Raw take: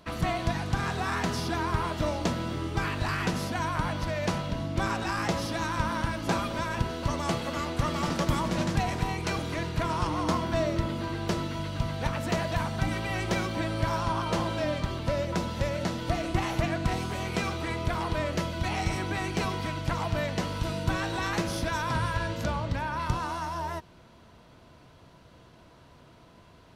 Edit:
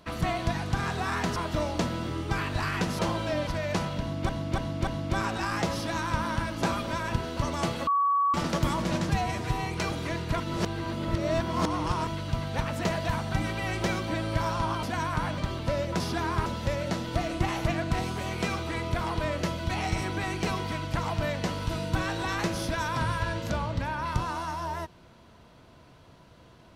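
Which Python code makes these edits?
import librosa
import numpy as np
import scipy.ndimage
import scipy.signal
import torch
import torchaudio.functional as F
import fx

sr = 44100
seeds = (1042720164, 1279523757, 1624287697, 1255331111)

y = fx.edit(x, sr, fx.move(start_s=1.36, length_s=0.46, to_s=15.4),
    fx.swap(start_s=3.45, length_s=0.55, other_s=14.3, other_length_s=0.48),
    fx.repeat(start_s=4.53, length_s=0.29, count=4),
    fx.bleep(start_s=7.53, length_s=0.47, hz=1130.0, db=-21.0),
    fx.stretch_span(start_s=8.75, length_s=0.38, factor=1.5),
    fx.reverse_span(start_s=9.87, length_s=1.67), tone=tone)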